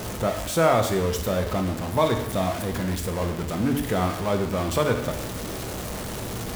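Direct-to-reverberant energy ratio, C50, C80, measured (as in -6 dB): 4.5 dB, 8.5 dB, 10.5 dB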